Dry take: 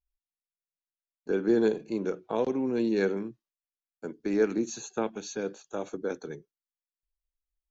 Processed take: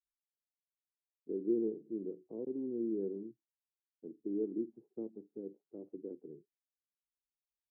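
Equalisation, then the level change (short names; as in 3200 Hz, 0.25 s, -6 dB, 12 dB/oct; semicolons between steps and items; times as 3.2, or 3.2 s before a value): HPF 120 Hz 6 dB/oct; ladder low-pass 410 Hz, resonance 50%; -4.5 dB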